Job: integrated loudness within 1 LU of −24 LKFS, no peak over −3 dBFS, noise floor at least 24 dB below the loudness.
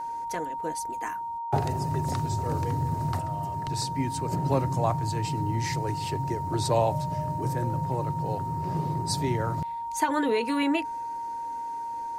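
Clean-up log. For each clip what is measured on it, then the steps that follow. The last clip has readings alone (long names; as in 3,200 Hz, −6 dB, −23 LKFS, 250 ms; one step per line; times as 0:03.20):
interfering tone 930 Hz; level of the tone −31 dBFS; integrated loudness −29.0 LKFS; sample peak −11.0 dBFS; target loudness −24.0 LKFS
→ notch filter 930 Hz, Q 30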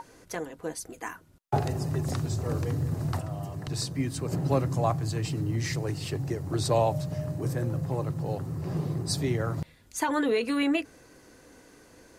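interfering tone none found; integrated loudness −30.0 LKFS; sample peak −12.5 dBFS; target loudness −24.0 LKFS
→ level +6 dB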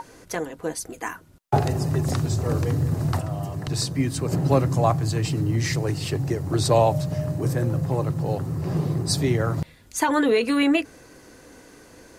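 integrated loudness −24.0 LKFS; sample peak −6.5 dBFS; background noise floor −50 dBFS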